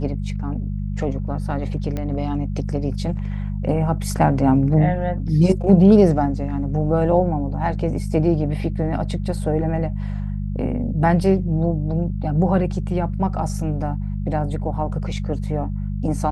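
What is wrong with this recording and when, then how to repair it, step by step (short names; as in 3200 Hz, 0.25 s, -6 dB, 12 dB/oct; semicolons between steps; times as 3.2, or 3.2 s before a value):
hum 50 Hz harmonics 4 -25 dBFS
1.97 pop -15 dBFS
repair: de-click; de-hum 50 Hz, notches 4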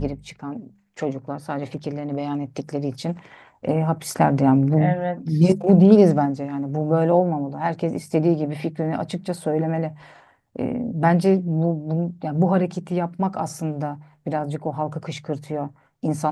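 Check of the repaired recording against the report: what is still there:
none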